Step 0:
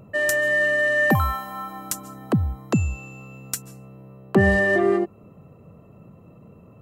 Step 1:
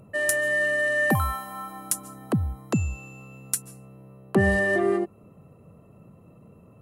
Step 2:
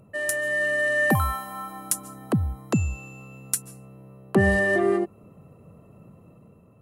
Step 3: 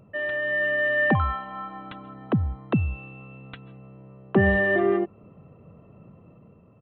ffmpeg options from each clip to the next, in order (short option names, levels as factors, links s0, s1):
-af "equalizer=f=10000:w=2.9:g=13.5,volume=0.668"
-af "dynaudnorm=f=130:g=9:m=1.68,volume=0.708"
-af "aresample=8000,aresample=44100"